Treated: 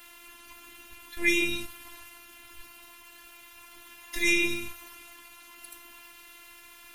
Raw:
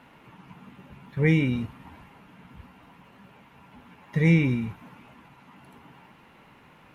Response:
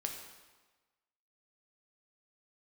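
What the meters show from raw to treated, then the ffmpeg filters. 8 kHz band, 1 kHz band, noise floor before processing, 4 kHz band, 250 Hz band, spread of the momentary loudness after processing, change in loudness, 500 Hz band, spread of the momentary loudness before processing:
can't be measured, −2.5 dB, −55 dBFS, +10.0 dB, −9.5 dB, 22 LU, −2.5 dB, −4.5 dB, 17 LU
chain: -af "highshelf=frequency=2700:gain=9,afftfilt=real='hypot(re,im)*cos(PI*b)':imag='0':win_size=512:overlap=0.75,lowshelf=frequency=120:gain=10,crystalizer=i=9.5:c=0,volume=-5dB"

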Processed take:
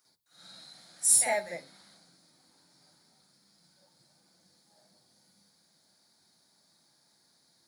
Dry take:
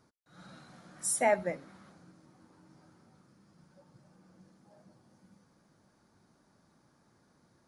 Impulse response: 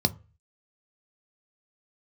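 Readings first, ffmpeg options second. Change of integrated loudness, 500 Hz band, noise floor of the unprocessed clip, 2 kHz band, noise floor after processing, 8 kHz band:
+5.5 dB, −4.0 dB, −69 dBFS, +1.0 dB, −69 dBFS, +10.5 dB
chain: -filter_complex "[0:a]aderivative,acrusher=bits=7:mode=log:mix=0:aa=0.000001,asplit=2[link_01][link_02];[1:a]atrim=start_sample=2205,asetrate=40131,aresample=44100,adelay=50[link_03];[link_02][link_03]afir=irnorm=-1:irlink=0,volume=-4.5dB[link_04];[link_01][link_04]amix=inputs=2:normalize=0,volume=6dB"

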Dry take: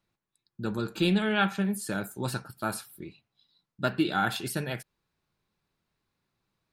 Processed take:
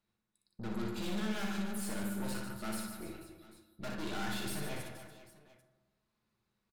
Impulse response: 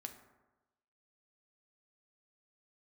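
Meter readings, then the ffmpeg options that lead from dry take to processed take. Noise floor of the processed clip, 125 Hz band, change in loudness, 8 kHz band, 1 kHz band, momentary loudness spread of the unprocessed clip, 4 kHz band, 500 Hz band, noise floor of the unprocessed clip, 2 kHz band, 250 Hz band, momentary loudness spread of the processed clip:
−84 dBFS, −10.0 dB, −9.5 dB, −4.5 dB, −11.5 dB, 13 LU, −9.0 dB, −10.5 dB, below −85 dBFS, −11.0 dB, −8.5 dB, 16 LU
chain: -filter_complex "[0:a]aresample=32000,aresample=44100,aeval=exprs='(tanh(89.1*val(0)+0.75)-tanh(0.75))/89.1':channel_layout=same,aecho=1:1:60|150|285|487.5|791.2:0.631|0.398|0.251|0.158|0.1[link_01];[1:a]atrim=start_sample=2205,asetrate=38367,aresample=44100[link_02];[link_01][link_02]afir=irnorm=-1:irlink=0,volume=3dB"

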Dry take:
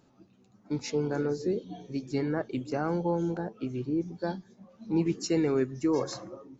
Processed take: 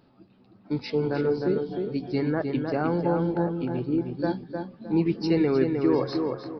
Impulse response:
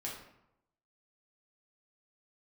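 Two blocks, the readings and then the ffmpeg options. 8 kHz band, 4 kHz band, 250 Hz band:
can't be measured, +2.0 dB, +5.0 dB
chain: -filter_complex "[0:a]asplit=2[link_01][link_02];[link_02]adelay=308,lowpass=frequency=2500:poles=1,volume=-4.5dB,asplit=2[link_03][link_04];[link_04]adelay=308,lowpass=frequency=2500:poles=1,volume=0.31,asplit=2[link_05][link_06];[link_06]adelay=308,lowpass=frequency=2500:poles=1,volume=0.31,asplit=2[link_07][link_08];[link_08]adelay=308,lowpass=frequency=2500:poles=1,volume=0.31[link_09];[link_03][link_05][link_07][link_09]amix=inputs=4:normalize=0[link_10];[link_01][link_10]amix=inputs=2:normalize=0,aresample=11025,aresample=44100,volume=3.5dB"

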